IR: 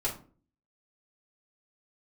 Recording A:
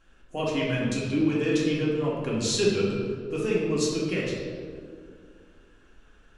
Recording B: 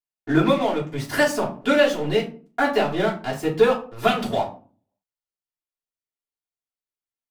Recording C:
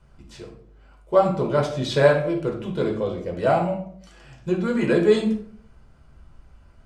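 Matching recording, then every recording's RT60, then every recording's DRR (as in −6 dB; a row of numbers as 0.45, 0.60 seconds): B; 2.1, 0.40, 0.60 seconds; −5.5, −6.5, −0.5 decibels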